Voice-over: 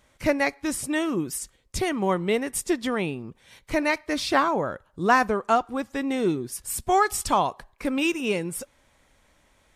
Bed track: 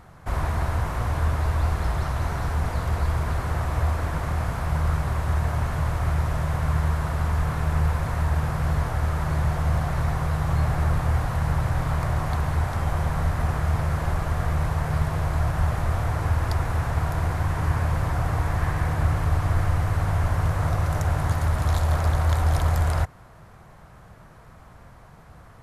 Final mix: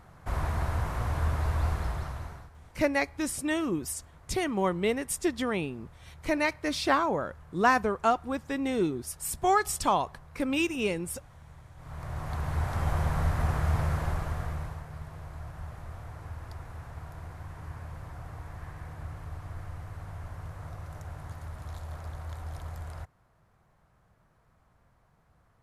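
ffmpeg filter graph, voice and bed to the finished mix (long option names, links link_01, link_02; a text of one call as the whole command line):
ffmpeg -i stem1.wav -i stem2.wav -filter_complex "[0:a]adelay=2550,volume=-3.5dB[link_01];[1:a]volume=19dB,afade=type=out:start_time=1.69:duration=0.81:silence=0.0749894,afade=type=in:start_time=11.76:duration=1.13:silence=0.0630957,afade=type=out:start_time=13.83:duration=1.03:silence=0.188365[link_02];[link_01][link_02]amix=inputs=2:normalize=0" out.wav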